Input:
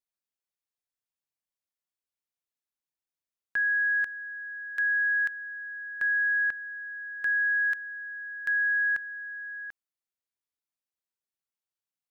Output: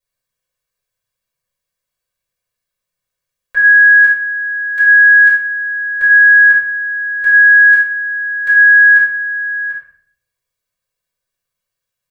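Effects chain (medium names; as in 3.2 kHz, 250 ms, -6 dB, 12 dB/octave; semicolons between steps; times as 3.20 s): tempo 1×; comb 1.8 ms, depth 99%; small resonant body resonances 1.5 kHz, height 8 dB; reverberation RT60 0.60 s, pre-delay 4 ms, DRR -8 dB; trim -1 dB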